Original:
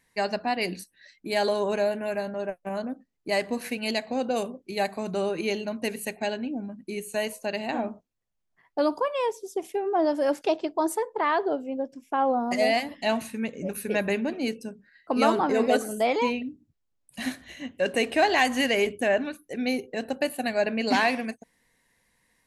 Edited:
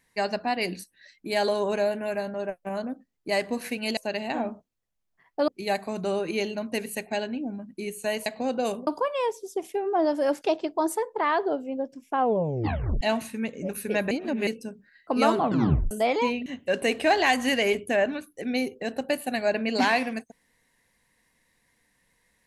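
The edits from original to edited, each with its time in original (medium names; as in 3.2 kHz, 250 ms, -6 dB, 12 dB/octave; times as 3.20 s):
3.97–4.58 s: swap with 7.36–8.87 s
12.18 s: tape stop 0.83 s
14.11–14.47 s: reverse
15.36 s: tape stop 0.55 s
16.46–17.58 s: delete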